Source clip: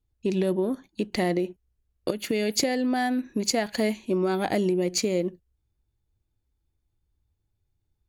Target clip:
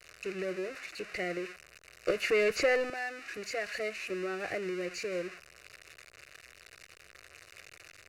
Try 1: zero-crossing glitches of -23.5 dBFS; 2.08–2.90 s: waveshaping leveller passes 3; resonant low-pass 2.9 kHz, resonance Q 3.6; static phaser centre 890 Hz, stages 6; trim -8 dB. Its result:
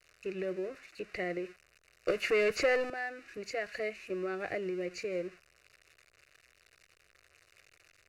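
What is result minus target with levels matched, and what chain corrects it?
zero-crossing glitches: distortion -10 dB
zero-crossing glitches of -13 dBFS; 2.08–2.90 s: waveshaping leveller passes 3; resonant low-pass 2.9 kHz, resonance Q 3.6; static phaser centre 890 Hz, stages 6; trim -8 dB

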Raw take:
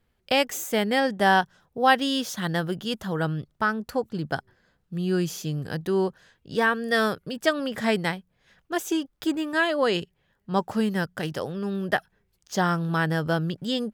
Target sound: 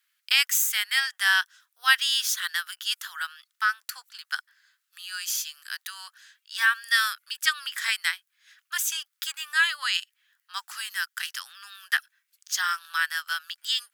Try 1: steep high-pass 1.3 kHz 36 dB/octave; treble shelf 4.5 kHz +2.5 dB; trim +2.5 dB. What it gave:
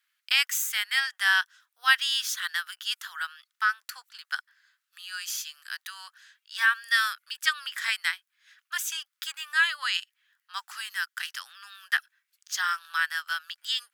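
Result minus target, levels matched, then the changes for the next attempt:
8 kHz band -3.0 dB
change: treble shelf 4.5 kHz +9 dB

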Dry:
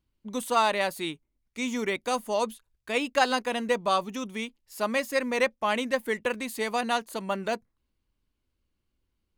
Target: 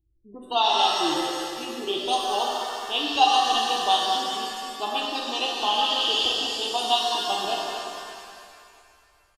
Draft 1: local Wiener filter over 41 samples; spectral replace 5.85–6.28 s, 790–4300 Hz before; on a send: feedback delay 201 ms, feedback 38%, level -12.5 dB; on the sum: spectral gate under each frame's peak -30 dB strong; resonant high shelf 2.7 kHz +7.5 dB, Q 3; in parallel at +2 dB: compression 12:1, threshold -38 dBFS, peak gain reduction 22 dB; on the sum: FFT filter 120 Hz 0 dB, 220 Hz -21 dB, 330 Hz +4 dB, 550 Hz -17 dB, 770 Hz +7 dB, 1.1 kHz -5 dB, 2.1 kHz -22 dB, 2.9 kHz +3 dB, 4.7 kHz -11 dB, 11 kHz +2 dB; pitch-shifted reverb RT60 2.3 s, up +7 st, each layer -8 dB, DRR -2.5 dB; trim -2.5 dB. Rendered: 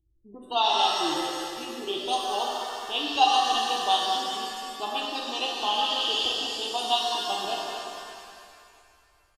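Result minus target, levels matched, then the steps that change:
compression: peak gain reduction +9.5 dB
change: compression 12:1, threshold -27.5 dBFS, peak gain reduction 12.5 dB

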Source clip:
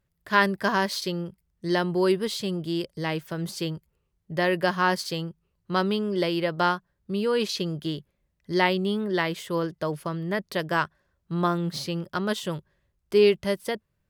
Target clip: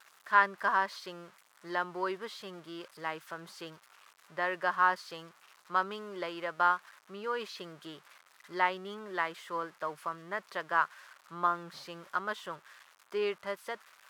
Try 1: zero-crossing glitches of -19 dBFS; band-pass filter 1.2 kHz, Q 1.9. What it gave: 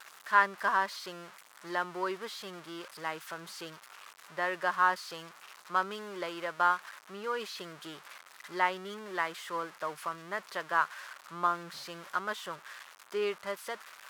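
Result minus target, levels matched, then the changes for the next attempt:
zero-crossing glitches: distortion +8 dB
change: zero-crossing glitches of -27 dBFS

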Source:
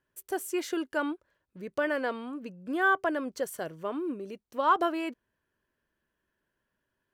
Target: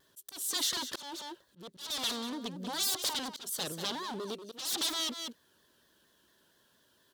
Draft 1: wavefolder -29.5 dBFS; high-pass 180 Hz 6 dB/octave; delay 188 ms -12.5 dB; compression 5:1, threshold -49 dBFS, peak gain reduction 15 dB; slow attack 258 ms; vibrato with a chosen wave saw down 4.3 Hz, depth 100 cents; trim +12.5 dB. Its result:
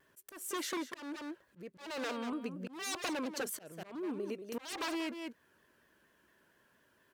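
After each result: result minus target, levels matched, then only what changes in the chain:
wavefolder: distortion -11 dB; 4 kHz band -6.5 dB
change: wavefolder -36 dBFS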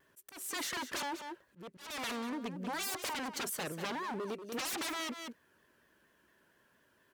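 4 kHz band -4.5 dB
add after compression: resonant high shelf 2.9 kHz +6.5 dB, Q 3

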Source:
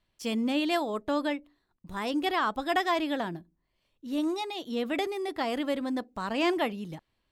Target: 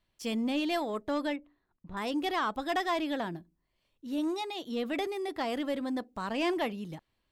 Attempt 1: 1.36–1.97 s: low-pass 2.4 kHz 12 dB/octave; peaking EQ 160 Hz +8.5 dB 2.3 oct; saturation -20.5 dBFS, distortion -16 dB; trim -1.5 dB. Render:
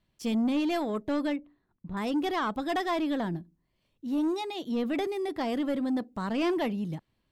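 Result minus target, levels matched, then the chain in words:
125 Hz band +5.0 dB
1.36–1.97 s: low-pass 2.4 kHz 12 dB/octave; saturation -20.5 dBFS, distortion -19 dB; trim -1.5 dB

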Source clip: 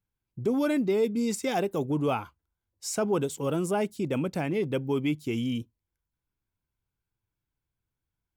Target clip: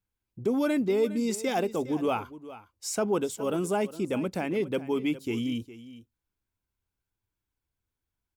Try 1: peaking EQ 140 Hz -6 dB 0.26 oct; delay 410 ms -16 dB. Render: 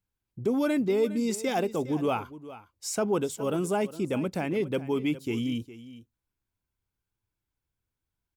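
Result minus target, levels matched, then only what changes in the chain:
125 Hz band +2.5 dB
change: peaking EQ 140 Hz -14 dB 0.26 oct

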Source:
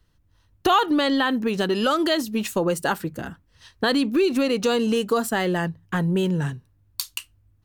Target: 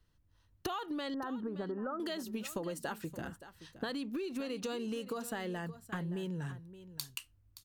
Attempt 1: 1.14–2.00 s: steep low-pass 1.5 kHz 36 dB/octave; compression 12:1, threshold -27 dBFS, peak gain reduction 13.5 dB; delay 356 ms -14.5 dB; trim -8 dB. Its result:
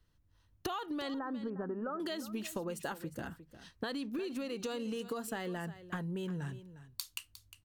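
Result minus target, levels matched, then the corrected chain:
echo 216 ms early
1.14–2.00 s: steep low-pass 1.5 kHz 36 dB/octave; compression 12:1, threshold -27 dBFS, peak gain reduction 13.5 dB; delay 572 ms -14.5 dB; trim -8 dB

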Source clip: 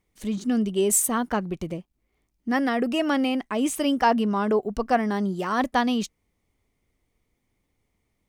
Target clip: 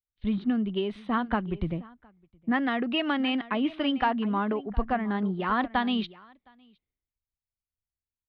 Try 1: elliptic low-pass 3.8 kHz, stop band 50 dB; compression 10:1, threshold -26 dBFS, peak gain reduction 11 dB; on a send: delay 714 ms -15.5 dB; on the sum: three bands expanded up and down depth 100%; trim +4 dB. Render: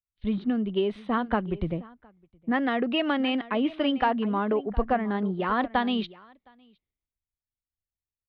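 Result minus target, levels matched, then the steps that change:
500 Hz band +3.0 dB
add after compression: dynamic bell 500 Hz, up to -6 dB, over -45 dBFS, Q 1.7

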